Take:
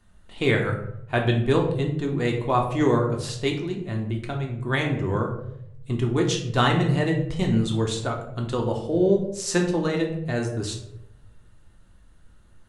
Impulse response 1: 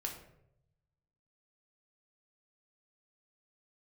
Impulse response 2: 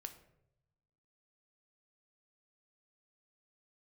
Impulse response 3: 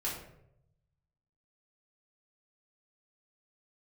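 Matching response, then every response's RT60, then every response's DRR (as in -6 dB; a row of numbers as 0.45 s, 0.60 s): 1; 0.75 s, 0.80 s, 0.75 s; 0.5 dB, 7.0 dB, -6.5 dB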